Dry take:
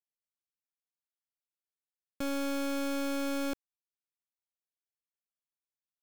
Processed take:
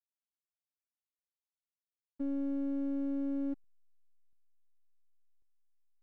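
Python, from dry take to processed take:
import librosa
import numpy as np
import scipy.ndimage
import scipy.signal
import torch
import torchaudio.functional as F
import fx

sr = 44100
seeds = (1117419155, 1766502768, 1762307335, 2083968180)

y = fx.spec_expand(x, sr, power=3.5)
y = fx.dmg_noise_colour(y, sr, seeds[0], colour='brown', level_db=-65.0)
y = fx.backlash(y, sr, play_db=-47.0)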